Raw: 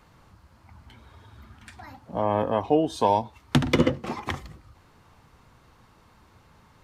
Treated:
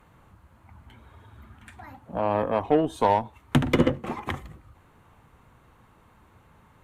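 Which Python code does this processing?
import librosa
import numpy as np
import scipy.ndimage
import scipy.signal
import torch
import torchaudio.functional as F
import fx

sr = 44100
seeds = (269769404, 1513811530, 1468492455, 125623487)

y = fx.peak_eq(x, sr, hz=5000.0, db=-14.0, octaves=0.69)
y = fx.cheby_harmonics(y, sr, harmonics=(8,), levels_db=(-26,), full_scale_db=-6.0)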